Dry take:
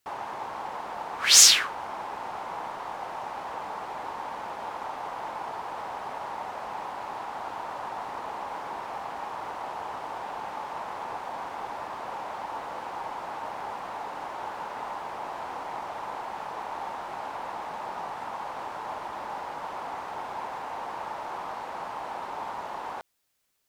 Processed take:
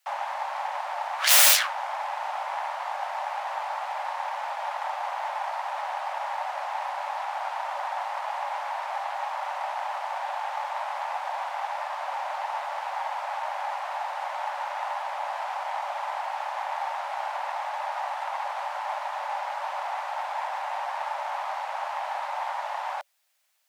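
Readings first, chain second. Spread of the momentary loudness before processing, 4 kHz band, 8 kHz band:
1 LU, -3.5 dB, -4.5 dB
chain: self-modulated delay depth 0.95 ms; wrapped overs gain 14 dB; rippled Chebyshev high-pass 560 Hz, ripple 3 dB; gain +6 dB

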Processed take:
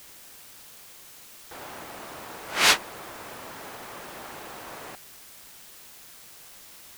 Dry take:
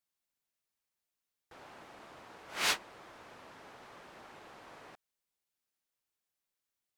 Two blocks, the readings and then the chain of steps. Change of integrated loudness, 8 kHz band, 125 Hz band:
+4.5 dB, +12.0 dB, +12.0 dB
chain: in parallel at -9 dB: requantised 8-bit, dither triangular; on the sum: gain +9 dB

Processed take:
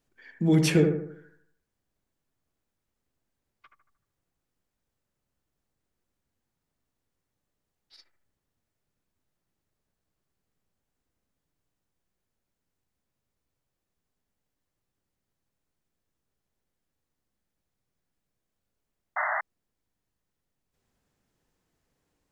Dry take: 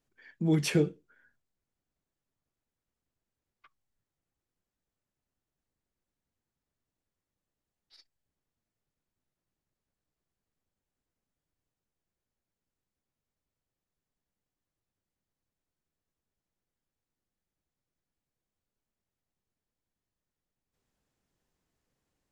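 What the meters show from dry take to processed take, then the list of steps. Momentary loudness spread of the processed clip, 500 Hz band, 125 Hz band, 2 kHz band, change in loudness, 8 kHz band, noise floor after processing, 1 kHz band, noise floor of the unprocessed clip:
14 LU, +6.0 dB, +5.5 dB, +10.5 dB, +3.0 dB, +4.0 dB, -84 dBFS, +17.0 dB, under -85 dBFS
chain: analogue delay 76 ms, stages 1024, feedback 45%, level -5.5 dB; painted sound noise, 19.16–19.41, 580–2100 Hz -32 dBFS; gain +4 dB

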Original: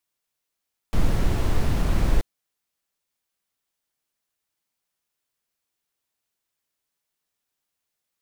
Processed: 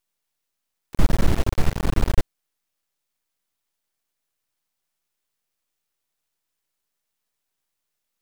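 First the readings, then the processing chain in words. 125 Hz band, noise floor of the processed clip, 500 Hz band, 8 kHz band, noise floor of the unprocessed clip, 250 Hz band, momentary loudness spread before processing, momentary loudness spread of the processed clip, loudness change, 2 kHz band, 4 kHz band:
+1.0 dB, -81 dBFS, +2.0 dB, +2.0 dB, -83 dBFS, +2.0 dB, 6 LU, 8 LU, +1.0 dB, +2.0 dB, +2.0 dB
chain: half-wave rectifier; gain +5 dB

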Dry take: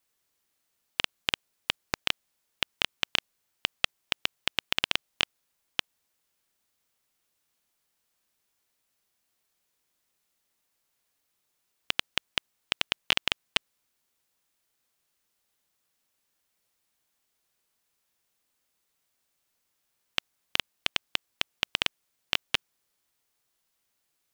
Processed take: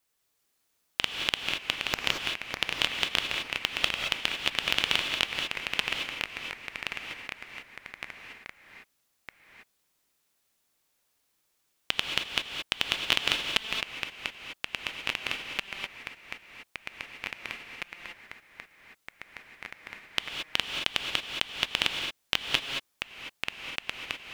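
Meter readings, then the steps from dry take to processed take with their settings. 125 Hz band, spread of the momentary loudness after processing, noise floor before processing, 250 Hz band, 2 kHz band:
+3.0 dB, 17 LU, -78 dBFS, +3.5 dB, +4.0 dB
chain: non-linear reverb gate 0.25 s rising, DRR 3 dB; echoes that change speed 0.365 s, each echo -2 st, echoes 3, each echo -6 dB

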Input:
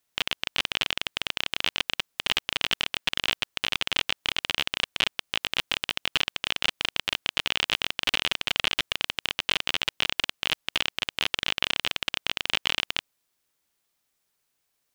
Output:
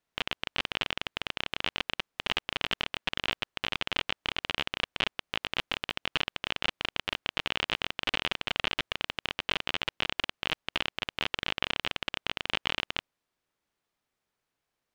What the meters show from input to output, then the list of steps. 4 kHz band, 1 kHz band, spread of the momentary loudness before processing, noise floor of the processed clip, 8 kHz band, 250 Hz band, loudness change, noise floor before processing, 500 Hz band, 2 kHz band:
-6.0 dB, -1.5 dB, 3 LU, under -85 dBFS, -11.5 dB, 0.0 dB, -5.0 dB, -77 dBFS, -0.5 dB, -4.0 dB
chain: LPF 1800 Hz 6 dB/oct

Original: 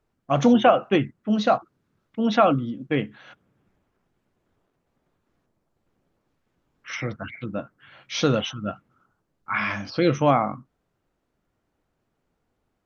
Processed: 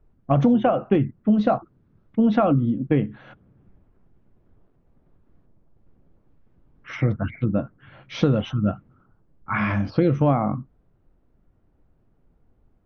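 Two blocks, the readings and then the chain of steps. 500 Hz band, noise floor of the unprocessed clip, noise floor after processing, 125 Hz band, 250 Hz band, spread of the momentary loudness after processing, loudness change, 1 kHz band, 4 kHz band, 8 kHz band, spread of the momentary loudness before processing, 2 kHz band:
-1.0 dB, -76 dBFS, -63 dBFS, +7.0 dB, +3.0 dB, 11 LU, +0.5 dB, -3.5 dB, -8.5 dB, n/a, 15 LU, -3.5 dB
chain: Bessel low-pass 4500 Hz; tilt -3.5 dB/oct; compressor 6:1, threshold -17 dBFS, peak gain reduction 10.5 dB; gain +2 dB

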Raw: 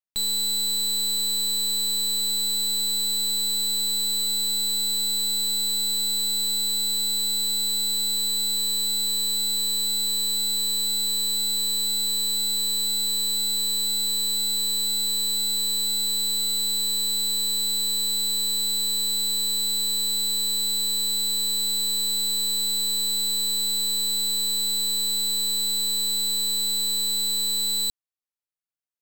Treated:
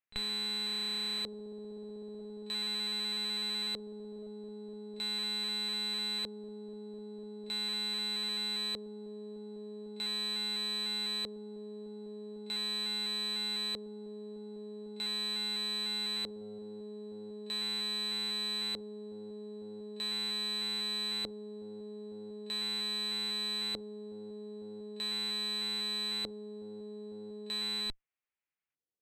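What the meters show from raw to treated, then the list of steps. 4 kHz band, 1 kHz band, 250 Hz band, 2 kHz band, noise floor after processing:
-12.0 dB, -1.5 dB, -1.0 dB, +2.5 dB, -45 dBFS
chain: LFO low-pass square 0.4 Hz 450–2300 Hz; pre-echo 36 ms -21 dB; added harmonics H 6 -28 dB, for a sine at -20.5 dBFS

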